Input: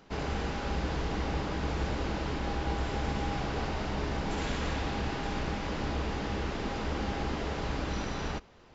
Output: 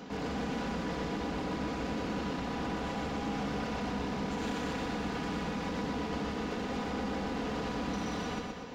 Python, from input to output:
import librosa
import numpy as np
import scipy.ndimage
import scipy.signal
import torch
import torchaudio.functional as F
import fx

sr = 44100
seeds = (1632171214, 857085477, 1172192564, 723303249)

p1 = scipy.signal.sosfilt(scipy.signal.butter(2, 120.0, 'highpass', fs=sr, output='sos'), x)
p2 = fx.low_shelf(p1, sr, hz=400.0, db=7.0)
p3 = p2 + 0.58 * np.pad(p2, (int(4.1 * sr / 1000.0), 0))[:len(p2)]
p4 = fx.over_compress(p3, sr, threshold_db=-41.0, ratio=-1.0)
p5 = p3 + (p4 * 10.0 ** (2.0 / 20.0))
p6 = np.clip(p5, -10.0 ** (-26.0 / 20.0), 10.0 ** (-26.0 / 20.0))
p7 = p6 + fx.echo_feedback(p6, sr, ms=122, feedback_pct=50, wet_db=-4.0, dry=0)
y = p7 * 10.0 ** (-7.0 / 20.0)